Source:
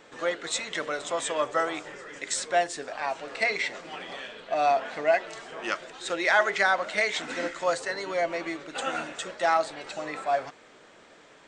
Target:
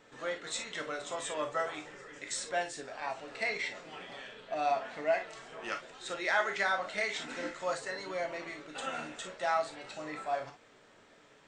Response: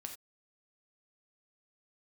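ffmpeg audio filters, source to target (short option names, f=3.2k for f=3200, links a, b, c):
-filter_complex "[0:a]lowshelf=f=83:g=10[a];[1:a]atrim=start_sample=2205,asetrate=66150,aresample=44100[b];[a][b]afir=irnorm=-1:irlink=0"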